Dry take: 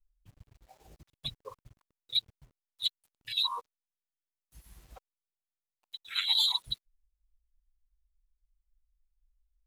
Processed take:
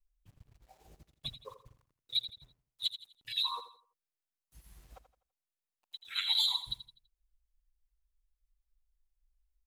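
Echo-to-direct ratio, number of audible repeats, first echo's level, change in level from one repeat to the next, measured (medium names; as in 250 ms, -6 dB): -11.5 dB, 3, -12.0 dB, -9.0 dB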